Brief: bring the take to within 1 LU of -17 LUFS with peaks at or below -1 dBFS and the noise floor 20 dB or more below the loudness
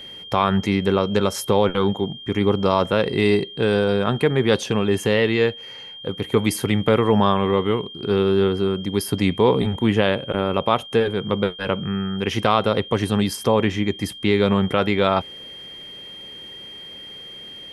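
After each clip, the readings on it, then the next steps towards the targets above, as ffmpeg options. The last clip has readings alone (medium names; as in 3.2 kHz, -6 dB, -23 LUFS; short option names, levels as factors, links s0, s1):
steady tone 3.2 kHz; tone level -36 dBFS; loudness -20.5 LUFS; peak level -3.0 dBFS; loudness target -17.0 LUFS
-> -af "bandreject=f=3200:w=30"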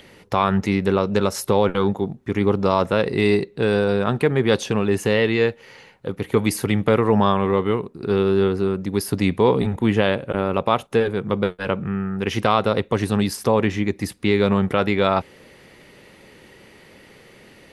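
steady tone not found; loudness -20.5 LUFS; peak level -3.0 dBFS; loudness target -17.0 LUFS
-> -af "volume=1.5,alimiter=limit=0.891:level=0:latency=1"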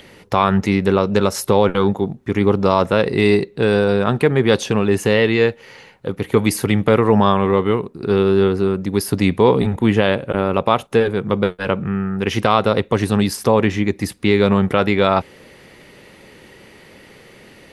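loudness -17.0 LUFS; peak level -1.0 dBFS; noise floor -46 dBFS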